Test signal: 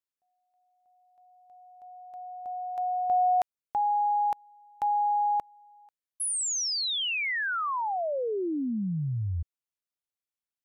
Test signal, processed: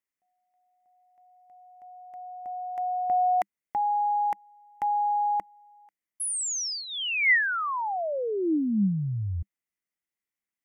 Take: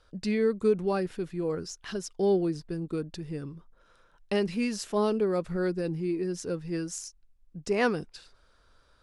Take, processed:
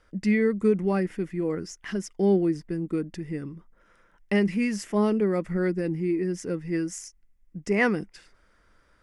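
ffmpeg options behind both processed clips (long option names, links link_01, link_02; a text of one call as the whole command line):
ffmpeg -i in.wav -af "equalizer=frequency=200:width_type=o:width=0.33:gain=8,equalizer=frequency=315:width_type=o:width=0.33:gain=6,equalizer=frequency=2000:width_type=o:width=0.33:gain=12,equalizer=frequency=4000:width_type=o:width=0.33:gain=-11" out.wav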